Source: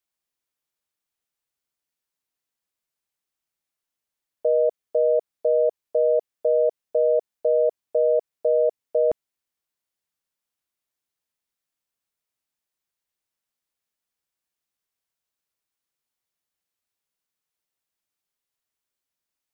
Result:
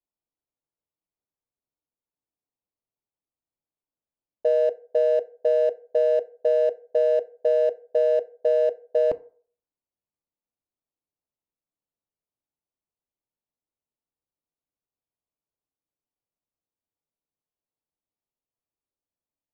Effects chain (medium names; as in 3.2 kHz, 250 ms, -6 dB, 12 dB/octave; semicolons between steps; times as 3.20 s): local Wiener filter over 25 samples; FDN reverb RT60 0.48 s, low-frequency decay 0.7×, high-frequency decay 0.55×, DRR 12.5 dB; tape noise reduction on one side only decoder only